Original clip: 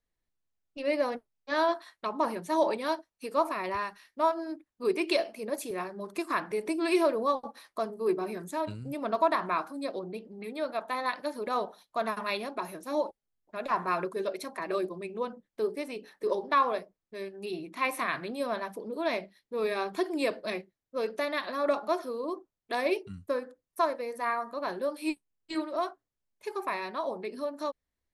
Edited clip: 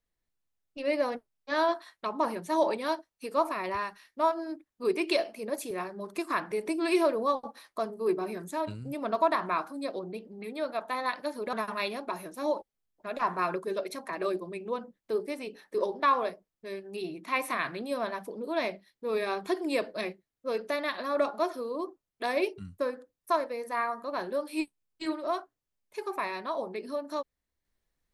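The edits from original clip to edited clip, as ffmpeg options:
-filter_complex "[0:a]asplit=2[a][b];[a]atrim=end=11.532[c];[b]atrim=start=12.018[d];[c][d]acrossfade=d=0.004:c1=hsin:c2=hsin"

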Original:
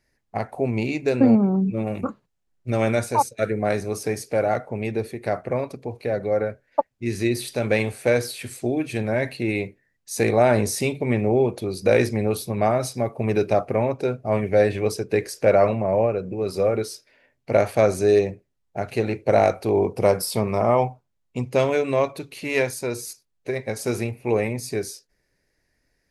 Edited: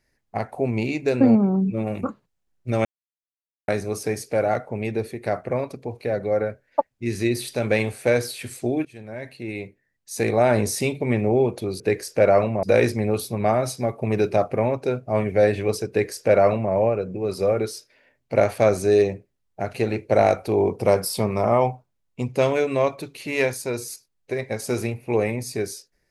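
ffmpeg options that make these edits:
-filter_complex "[0:a]asplit=6[a][b][c][d][e][f];[a]atrim=end=2.85,asetpts=PTS-STARTPTS,afade=t=out:st=2.846:d=0.004:c=hsin[g];[b]atrim=start=2.85:end=3.68,asetpts=PTS-STARTPTS,volume=0[h];[c]atrim=start=3.68:end=8.85,asetpts=PTS-STARTPTS,afade=t=in:d=0.004:c=hsin,afade=t=out:st=5.166:d=0.004:c=hsin:silence=0.112202[i];[d]atrim=start=8.85:end=11.802,asetpts=PTS-STARTPTS,afade=t=in:d=1.82:silence=0.112202[j];[e]atrim=start=15.058:end=15.892[k];[f]atrim=start=11.798[l];[g][h][i][j]concat=n=4:v=0:a=1[m];[m][k]acrossfade=d=0.004:c1=hsin:c2=hsin[n];[n][l]acrossfade=d=0.004:c1=hsin:c2=hsin"

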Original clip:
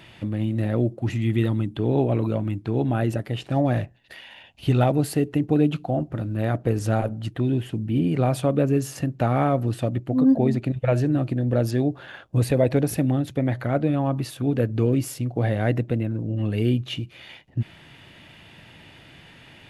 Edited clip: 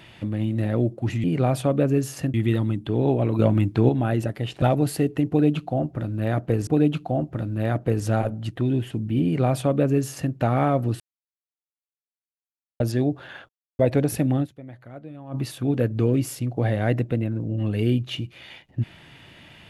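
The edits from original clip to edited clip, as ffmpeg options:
-filter_complex "[0:a]asplit=13[a][b][c][d][e][f][g][h][i][j][k][l][m];[a]atrim=end=1.242[n];[b]atrim=start=8.028:end=9.132[o];[c]atrim=start=1.238:end=2.292[p];[d]atrim=start=2.288:end=2.792,asetpts=PTS-STARTPTS,volume=6.5dB[q];[e]atrim=start=2.788:end=3.522[r];[f]atrim=start=4.788:end=6.842[s];[g]atrim=start=5.458:end=9.79,asetpts=PTS-STARTPTS,afade=t=out:st=4.328:d=0.004:c=hsin[t];[h]atrim=start=9.79:end=11.59,asetpts=PTS-STARTPTS,volume=0[u];[i]atrim=start=11.59:end=12.28,asetpts=PTS-STARTPTS,afade=t=in:d=0.004:c=hsin,afade=t=out:st=0.686:d=0.004:c=hsin[v];[j]atrim=start=12.28:end=12.58,asetpts=PTS-STARTPTS,volume=0[w];[k]atrim=start=12.58:end=13.44,asetpts=PTS-STARTPTS,afade=t=in:d=0.004:c=hsin,afade=t=out:st=0.65:d=0.21:c=exp:silence=0.133352[x];[l]atrim=start=13.44:end=13.93,asetpts=PTS-STARTPTS,volume=-17.5dB[y];[m]atrim=start=13.93,asetpts=PTS-STARTPTS,afade=t=in:d=0.21:c=exp:silence=0.133352[z];[n][o]acrossfade=d=0.004:c1=hsin:c2=hsin[aa];[aa][p]acrossfade=d=0.004:c1=hsin:c2=hsin[ab];[ab][q]acrossfade=d=0.004:c1=hsin:c2=hsin[ac];[ac][r]acrossfade=d=0.004:c1=hsin:c2=hsin[ad];[ad][s]acrossfade=d=0.004:c1=hsin:c2=hsin[ae];[t][u][v][w][x][y][z]concat=n=7:v=0:a=1[af];[ae][af]acrossfade=d=0.004:c1=hsin:c2=hsin"

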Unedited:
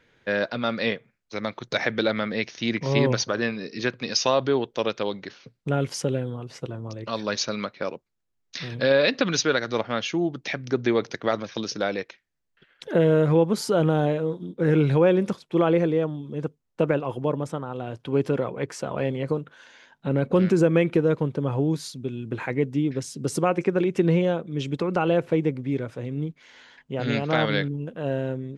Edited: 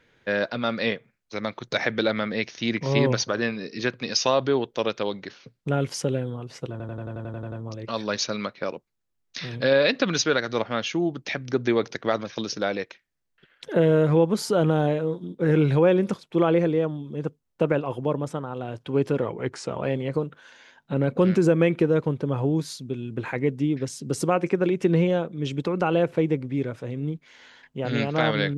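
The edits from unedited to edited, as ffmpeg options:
-filter_complex "[0:a]asplit=12[a][b][c][d][e][f][g][h][i][j][k][l];[a]atrim=end=6.802[m];[b]atrim=start=6.708:end=6.802[n];[c]atrim=start=6.708:end=6.802[o];[d]atrim=start=6.708:end=6.802[p];[e]atrim=start=6.708:end=6.802[q];[f]atrim=start=6.708:end=6.802[r];[g]atrim=start=6.708:end=6.802[s];[h]atrim=start=6.708:end=6.802[t];[i]atrim=start=6.708:end=6.802[u];[j]atrim=start=6.708:end=18.414[v];[k]atrim=start=18.41:end=18.93,asetpts=PTS-STARTPTS,asetrate=40572,aresample=44100,atrim=end_sample=24926,asetpts=PTS-STARTPTS[w];[l]atrim=start=18.926[x];[m][n]acrossfade=d=0.004:c1=hsin:c2=hsin[y];[y][o]acrossfade=d=0.004:c1=hsin:c2=hsin[z];[z][p]acrossfade=d=0.004:c1=hsin:c2=hsin[aa];[aa][q]acrossfade=d=0.004:c1=hsin:c2=hsin[ab];[ab][r]acrossfade=d=0.004:c1=hsin:c2=hsin[ac];[ac][s]acrossfade=d=0.004:c1=hsin:c2=hsin[ad];[ad][t]acrossfade=d=0.004:c1=hsin:c2=hsin[ae];[ae][u]acrossfade=d=0.004:c1=hsin:c2=hsin[af];[af][v]acrossfade=d=0.004:c1=hsin:c2=hsin[ag];[ag][w]acrossfade=d=0.004:c1=hsin:c2=hsin[ah];[ah][x]acrossfade=d=0.004:c1=hsin:c2=hsin"

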